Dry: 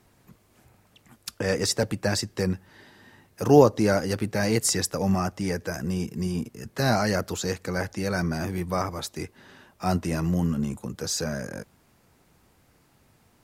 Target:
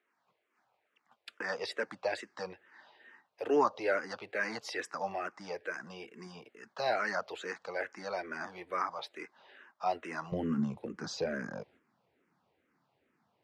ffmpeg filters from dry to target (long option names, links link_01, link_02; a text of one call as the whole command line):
ffmpeg -i in.wav -filter_complex "[0:a]asetnsamples=nb_out_samples=441:pad=0,asendcmd='10.32 highpass f 210',highpass=640,lowpass=2800,agate=range=-8dB:threshold=-57dB:ratio=16:detection=peak,asplit=2[link_01][link_02];[link_02]afreqshift=-2.3[link_03];[link_01][link_03]amix=inputs=2:normalize=1" out.wav